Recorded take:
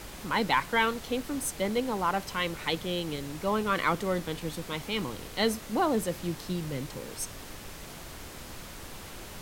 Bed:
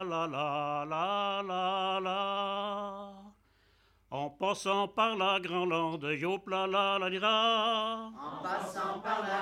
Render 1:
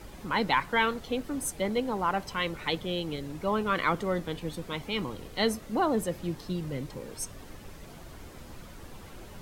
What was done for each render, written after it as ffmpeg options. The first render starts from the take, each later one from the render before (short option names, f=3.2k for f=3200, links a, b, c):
-af "afftdn=nr=9:nf=-44"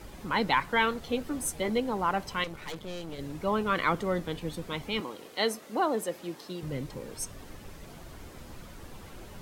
-filter_complex "[0:a]asettb=1/sr,asplit=3[a][b][c];[a]atrim=end=1.014[d];[b]atrim=start=1.01:end=1.78,asetpts=PTS-STARTPTS,afade=t=in:d=0.004:c=qsin,afade=t=out:st=0.766:d=0.004:c=qsin,asplit=2[e][f];[f]adelay=13,volume=-6.5dB[g];[e][g]amix=inputs=2:normalize=0,atrim=end_sample=33957[h];[c]atrim=start=1.776[i];[d][h]acrossfade=d=0.004:c1=hsin:c2=qsin[j];[j][i]acrossfade=d=0.004:c1=qsin:c2=hsin,asettb=1/sr,asplit=3[k][l][m];[k]atrim=end=2.444[n];[l]atrim=start=2.44:end=3.19,asetpts=PTS-STARTPTS,afade=t=in:d=0.004:c=qsin,afade=t=out:st=0.746:d=0.004:c=qsin,aeval=exprs='(tanh(56.2*val(0)+0.7)-tanh(0.7))/56.2':c=same[o];[m]atrim=start=3.186[p];[n][o]acrossfade=d=0.004:c1=hsin:c2=qsin[q];[q][p]acrossfade=d=0.004:c1=qsin:c2=hsin,asettb=1/sr,asplit=3[r][s][t];[r]atrim=end=5.004[u];[s]atrim=start=5:end=6.63,asetpts=PTS-STARTPTS,afade=t=in:d=0.004:c=qsin,afade=t=out:st=1.626:d=0.004:c=qsin,highpass=310[v];[t]atrim=start=6.626[w];[u][v]acrossfade=d=0.004:c1=hsin:c2=qsin[x];[x][w]acrossfade=d=0.004:c1=qsin:c2=hsin"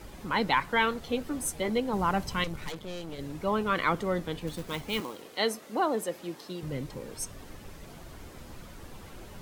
-filter_complex "[0:a]asettb=1/sr,asplit=3[a][b][c];[a]atrim=end=1.934[d];[b]atrim=start=1.93:end=2.69,asetpts=PTS-STARTPTS,afade=t=in:d=0.004:c=qsin,afade=t=out:st=0.756:d=0.004:c=qsin,bass=f=250:g=8,treble=f=4k:g=4[e];[c]atrim=start=2.686[f];[d][e]acrossfade=d=0.004:c1=hsin:c2=qsin[g];[g][f]acrossfade=d=0.004:c1=qsin:c2=hsin,asettb=1/sr,asplit=3[h][i][j];[h]atrim=end=4.474[k];[i]atrim=start=4.47:end=5.22,asetpts=PTS-STARTPTS,afade=t=in:d=0.004:c=qsin,afade=t=out:st=0.746:d=0.004:c=qsin,acrusher=bits=3:mode=log:mix=0:aa=0.000001[l];[j]atrim=start=5.216[m];[k][l]acrossfade=d=0.004:c1=hsin:c2=qsin[n];[n][m]acrossfade=d=0.004:c1=qsin:c2=hsin"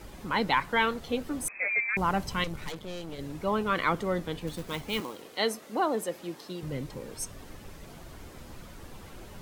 -filter_complex "[0:a]asettb=1/sr,asplit=3[a][b][c];[a]atrim=end=1.484[d];[b]atrim=start=1.48:end=1.97,asetpts=PTS-STARTPTS,afade=t=in:d=0.004:c=qsin,afade=t=out:st=0.486:d=0.004:c=qsin,lowpass=f=2.2k:t=q:w=0.5098,lowpass=f=2.2k:t=q:w=0.6013,lowpass=f=2.2k:t=q:w=0.9,lowpass=f=2.2k:t=q:w=2.563,afreqshift=-2600[e];[c]atrim=start=1.966[f];[d][e]acrossfade=d=0.004:c1=hsin:c2=qsin[g];[g][f]acrossfade=d=0.004:c1=qsin:c2=hsin"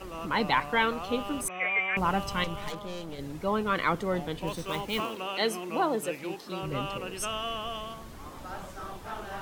-filter_complex "[1:a]volume=-6.5dB[a];[0:a][a]amix=inputs=2:normalize=0"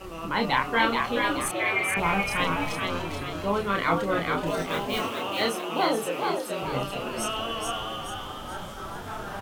-filter_complex "[0:a]asplit=2[a][b];[b]adelay=30,volume=-3dB[c];[a][c]amix=inputs=2:normalize=0,asplit=7[d][e][f][g][h][i][j];[e]adelay=429,afreqshift=89,volume=-3.5dB[k];[f]adelay=858,afreqshift=178,volume=-10.4dB[l];[g]adelay=1287,afreqshift=267,volume=-17.4dB[m];[h]adelay=1716,afreqshift=356,volume=-24.3dB[n];[i]adelay=2145,afreqshift=445,volume=-31.2dB[o];[j]adelay=2574,afreqshift=534,volume=-38.2dB[p];[d][k][l][m][n][o][p]amix=inputs=7:normalize=0"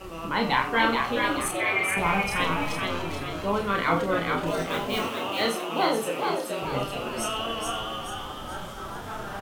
-filter_complex "[0:a]asplit=2[a][b];[b]adelay=48,volume=-11dB[c];[a][c]amix=inputs=2:normalize=0,asplit=2[d][e];[e]adelay=93.29,volume=-16dB,highshelf=f=4k:g=-2.1[f];[d][f]amix=inputs=2:normalize=0"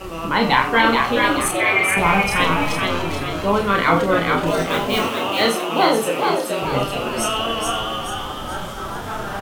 -af "volume=8dB,alimiter=limit=-3dB:level=0:latency=1"